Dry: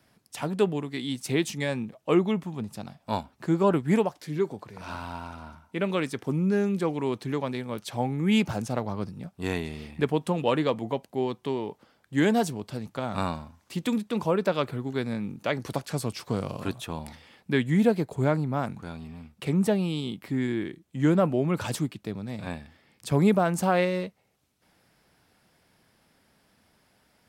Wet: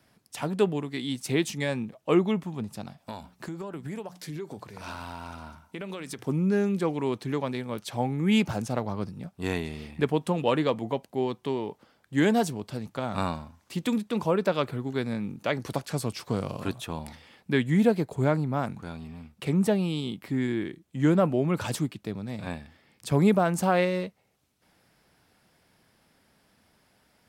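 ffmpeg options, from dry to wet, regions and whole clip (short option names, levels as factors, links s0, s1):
-filter_complex "[0:a]asettb=1/sr,asplit=3[s0][s1][s2];[s0]atrim=end=2.984[s3];[s1]atrim=start=2.98:end=6.25,asetpts=PTS-STARTPTS,afade=t=in:d=0.004:c=qsin,afade=t=out:st=3.266:d=0.004:c=qsin,highshelf=f=3800:g=5.5,bandreject=f=60:t=h:w=6,bandreject=f=120:t=h:w=6,bandreject=f=180:t=h:w=6,acompressor=threshold=0.0251:ratio=12:attack=3.2:release=140:knee=1:detection=peak[s4];[s2]atrim=start=6.246[s5];[s3][s4]acrossfade=d=0.004:c1=hsin:c2=qsin[s6];[s6][s5]acrossfade=d=0.004:c1=qsin:c2=hsin"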